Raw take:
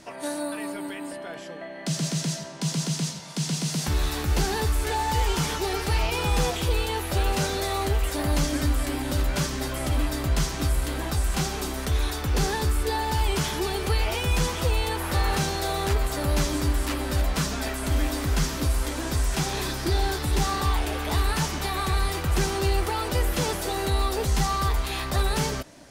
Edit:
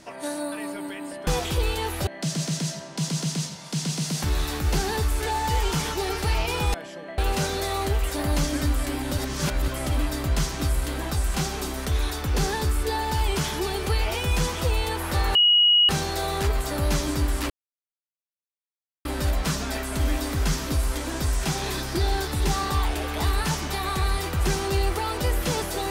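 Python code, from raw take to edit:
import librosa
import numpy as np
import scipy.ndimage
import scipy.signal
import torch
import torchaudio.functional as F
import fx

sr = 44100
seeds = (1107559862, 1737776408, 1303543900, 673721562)

y = fx.edit(x, sr, fx.swap(start_s=1.27, length_s=0.44, other_s=6.38, other_length_s=0.8),
    fx.reverse_span(start_s=9.18, length_s=0.5),
    fx.insert_tone(at_s=15.35, length_s=0.54, hz=2900.0, db=-14.0),
    fx.insert_silence(at_s=16.96, length_s=1.55), tone=tone)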